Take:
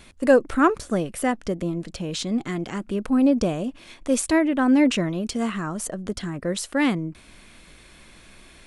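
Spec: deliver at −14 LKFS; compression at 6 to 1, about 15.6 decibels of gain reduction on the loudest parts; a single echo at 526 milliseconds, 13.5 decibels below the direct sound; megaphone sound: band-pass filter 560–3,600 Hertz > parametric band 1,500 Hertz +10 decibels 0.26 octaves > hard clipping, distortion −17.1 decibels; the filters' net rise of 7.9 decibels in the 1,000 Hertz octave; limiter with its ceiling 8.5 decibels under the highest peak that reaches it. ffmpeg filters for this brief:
ffmpeg -i in.wav -af "equalizer=frequency=1000:width_type=o:gain=9,acompressor=threshold=-26dB:ratio=6,alimiter=limit=-24dB:level=0:latency=1,highpass=560,lowpass=3600,equalizer=frequency=1500:width_type=o:width=0.26:gain=10,aecho=1:1:526:0.211,asoftclip=type=hard:threshold=-27dB,volume=24.5dB" out.wav

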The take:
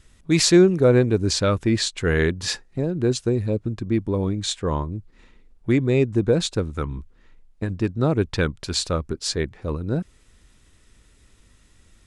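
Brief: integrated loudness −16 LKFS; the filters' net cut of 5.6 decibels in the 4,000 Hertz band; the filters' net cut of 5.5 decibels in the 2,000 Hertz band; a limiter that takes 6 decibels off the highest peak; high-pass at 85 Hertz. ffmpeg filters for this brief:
ffmpeg -i in.wav -af "highpass=85,equalizer=frequency=2000:width_type=o:gain=-6,equalizer=frequency=4000:width_type=o:gain=-5.5,volume=8.5dB,alimiter=limit=-3.5dB:level=0:latency=1" out.wav

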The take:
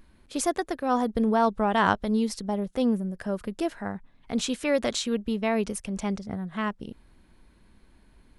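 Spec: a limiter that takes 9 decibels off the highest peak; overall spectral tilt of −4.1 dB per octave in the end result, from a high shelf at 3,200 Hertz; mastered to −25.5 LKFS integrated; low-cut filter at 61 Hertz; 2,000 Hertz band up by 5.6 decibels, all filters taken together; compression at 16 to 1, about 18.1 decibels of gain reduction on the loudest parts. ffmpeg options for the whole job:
ffmpeg -i in.wav -af "highpass=61,equalizer=frequency=2000:width_type=o:gain=4.5,highshelf=frequency=3200:gain=8.5,acompressor=threshold=-33dB:ratio=16,volume=14.5dB,alimiter=limit=-15dB:level=0:latency=1" out.wav

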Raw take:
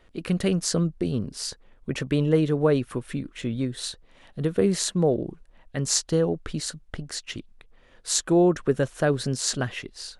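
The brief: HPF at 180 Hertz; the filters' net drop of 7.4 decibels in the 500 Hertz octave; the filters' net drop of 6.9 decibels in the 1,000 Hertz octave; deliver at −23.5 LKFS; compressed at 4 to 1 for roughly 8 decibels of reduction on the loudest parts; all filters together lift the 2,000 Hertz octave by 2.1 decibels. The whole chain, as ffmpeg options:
ffmpeg -i in.wav -af "highpass=180,equalizer=frequency=500:width_type=o:gain=-8,equalizer=frequency=1000:width_type=o:gain=-8,equalizer=frequency=2000:width_type=o:gain=6,acompressor=threshold=-29dB:ratio=4,volume=10dB" out.wav

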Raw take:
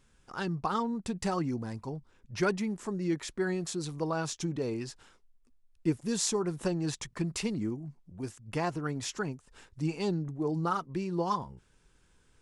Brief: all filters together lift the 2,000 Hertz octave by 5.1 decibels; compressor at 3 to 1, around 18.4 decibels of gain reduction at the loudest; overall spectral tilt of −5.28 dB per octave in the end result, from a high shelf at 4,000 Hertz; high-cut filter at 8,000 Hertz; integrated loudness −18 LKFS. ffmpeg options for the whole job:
ffmpeg -i in.wav -af "lowpass=8000,equalizer=frequency=2000:width_type=o:gain=8.5,highshelf=frequency=4000:gain=-5.5,acompressor=threshold=-49dB:ratio=3,volume=30dB" out.wav

